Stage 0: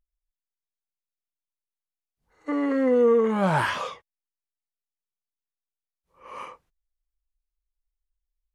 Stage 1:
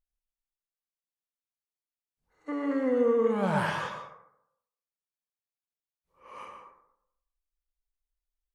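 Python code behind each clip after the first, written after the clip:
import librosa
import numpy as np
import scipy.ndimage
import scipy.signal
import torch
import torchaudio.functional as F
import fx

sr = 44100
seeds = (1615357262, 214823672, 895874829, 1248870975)

y = fx.rev_plate(x, sr, seeds[0], rt60_s=0.77, hf_ratio=0.4, predelay_ms=95, drr_db=4.5)
y = F.gain(torch.from_numpy(y), -6.5).numpy()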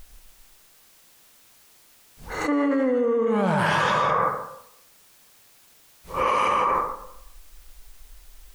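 y = fx.env_flatten(x, sr, amount_pct=100)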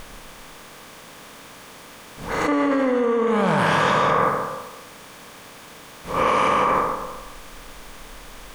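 y = fx.bin_compress(x, sr, power=0.6)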